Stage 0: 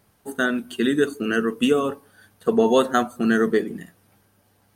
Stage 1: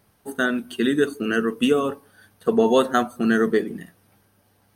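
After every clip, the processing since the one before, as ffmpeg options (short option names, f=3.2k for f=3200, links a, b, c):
-af "bandreject=f=7.2k:w=6.5"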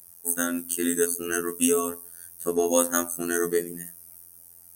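-af "afftfilt=real='hypot(re,im)*cos(PI*b)':imag='0':win_size=2048:overlap=0.75,aexciter=amount=10.6:drive=7.6:freq=5.7k,volume=-2.5dB"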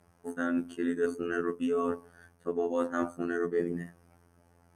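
-af "lowpass=1.8k,areverse,acompressor=threshold=-31dB:ratio=10,areverse,volume=5dB"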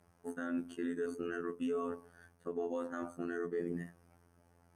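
-af "alimiter=limit=-22.5dB:level=0:latency=1:release=94,volume=-4dB"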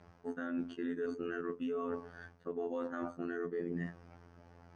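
-af "lowpass=f=5.3k:w=0.5412,lowpass=f=5.3k:w=1.3066,areverse,acompressor=threshold=-45dB:ratio=4,areverse,volume=9dB"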